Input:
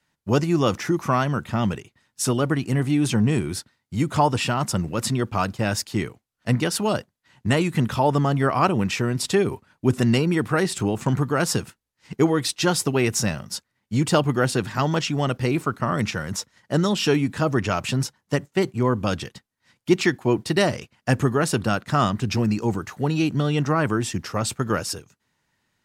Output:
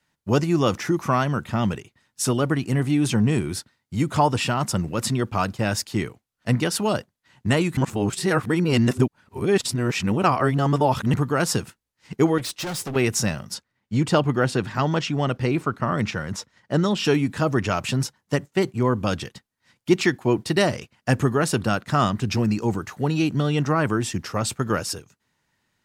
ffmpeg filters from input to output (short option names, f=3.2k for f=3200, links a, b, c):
-filter_complex "[0:a]asettb=1/sr,asplit=3[a][b][c];[a]atrim=end=12.384[d];[b]atrim=start=12.38:end=12.96,asetpts=PTS-STARTPTS,afade=t=in:d=0.004:c=qsin,afade=t=out:st=0.576:d=0.004:c=qsin,volume=27.5dB,asoftclip=hard,volume=-27.5dB[e];[c]atrim=start=12.956[f];[d][e]acrossfade=d=0.004:c1=hsin:c2=qsin[g];[g][f]acrossfade=d=0.004:c1=qsin:c2=hsin,asettb=1/sr,asplit=3[h][i][j];[h]atrim=end=13.544[k];[i]atrim=start=13.54:end=17.05,asetpts=PTS-STARTPTS,afade=t=in:d=0.004:c=qsin,afade=t=out:st=3.506:d=0.004:c=qsin,highshelf=f=7.5k:g=-11.5[l];[j]atrim=start=17.046[m];[k][l]acrossfade=d=0.004:c1=hsin:c2=qsin[n];[n][m]acrossfade=d=0.004:c1=qsin:c2=hsin,asplit=3[o][p][q];[o]atrim=end=7.772[r];[p]atrim=start=7.768:end=11.142,asetpts=PTS-STARTPTS,areverse[s];[q]atrim=start=11.138[t];[r][s]acrossfade=d=0.004:c1=hsin:c2=hsin[u];[u][t]acrossfade=d=0.004:c1=hsin:c2=hsin"